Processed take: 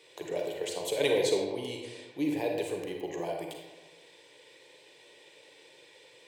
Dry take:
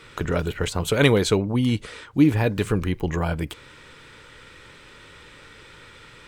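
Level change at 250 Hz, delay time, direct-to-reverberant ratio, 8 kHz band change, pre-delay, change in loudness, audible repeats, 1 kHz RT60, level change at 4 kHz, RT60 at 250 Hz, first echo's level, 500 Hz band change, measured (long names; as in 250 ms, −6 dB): −13.5 dB, no echo audible, 1.0 dB, −6.0 dB, 37 ms, −9.5 dB, no echo audible, 1.2 s, −7.0 dB, 1.2 s, no echo audible, −5.5 dB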